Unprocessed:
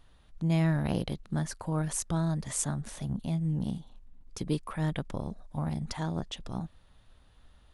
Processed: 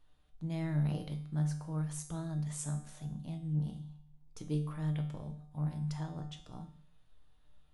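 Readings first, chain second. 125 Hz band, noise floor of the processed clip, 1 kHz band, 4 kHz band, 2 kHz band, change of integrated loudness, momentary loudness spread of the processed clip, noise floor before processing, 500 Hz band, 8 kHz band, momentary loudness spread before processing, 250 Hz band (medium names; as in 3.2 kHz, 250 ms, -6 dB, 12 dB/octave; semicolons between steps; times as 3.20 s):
-3.5 dB, -63 dBFS, -10.0 dB, -10.5 dB, -11.0 dB, -5.0 dB, 13 LU, -60 dBFS, -9.5 dB, -10.0 dB, 11 LU, -6.5 dB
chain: feedback comb 150 Hz, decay 0.62 s, harmonics all, mix 80%; simulated room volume 230 m³, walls furnished, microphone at 0.55 m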